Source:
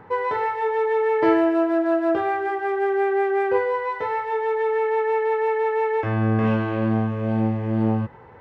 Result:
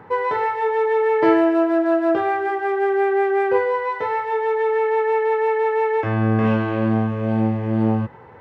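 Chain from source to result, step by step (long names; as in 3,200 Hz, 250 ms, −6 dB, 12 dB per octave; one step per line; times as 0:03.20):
high-pass filter 77 Hz
level +2.5 dB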